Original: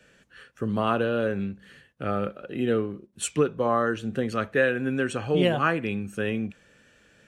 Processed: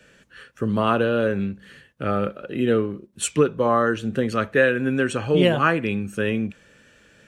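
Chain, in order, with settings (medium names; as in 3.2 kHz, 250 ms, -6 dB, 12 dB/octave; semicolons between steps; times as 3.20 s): band-stop 740 Hz, Q 12; trim +4.5 dB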